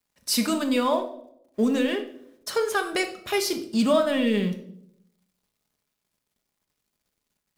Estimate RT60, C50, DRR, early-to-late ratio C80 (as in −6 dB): 0.70 s, 10.5 dB, 4.5 dB, 14.0 dB